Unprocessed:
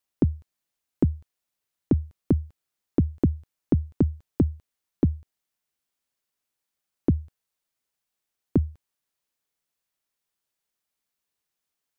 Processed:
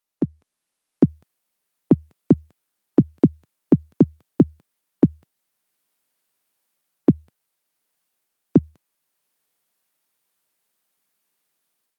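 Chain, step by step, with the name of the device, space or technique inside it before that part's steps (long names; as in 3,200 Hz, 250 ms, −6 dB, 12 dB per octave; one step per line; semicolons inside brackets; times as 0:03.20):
0:03.01–0:04.28: high-pass filter 75 Hz 24 dB per octave
video call (high-pass filter 140 Hz 24 dB per octave; automatic gain control gain up to 11 dB; Opus 32 kbit/s 48,000 Hz)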